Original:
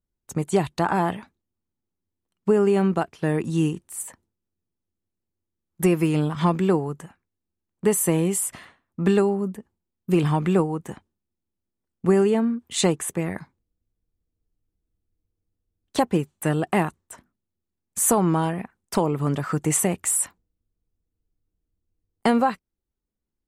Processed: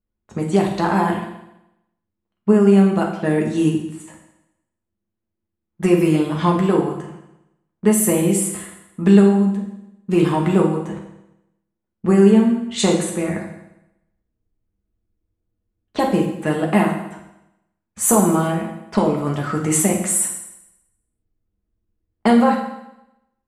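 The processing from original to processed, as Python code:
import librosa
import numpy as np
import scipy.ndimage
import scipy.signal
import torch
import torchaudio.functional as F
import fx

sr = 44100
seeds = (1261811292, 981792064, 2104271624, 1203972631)

y = fx.env_lowpass(x, sr, base_hz=2200.0, full_db=-18.5)
y = fx.rev_fdn(y, sr, rt60_s=0.87, lf_ratio=1.0, hf_ratio=0.95, size_ms=28.0, drr_db=-0.5)
y = y * librosa.db_to_amplitude(1.0)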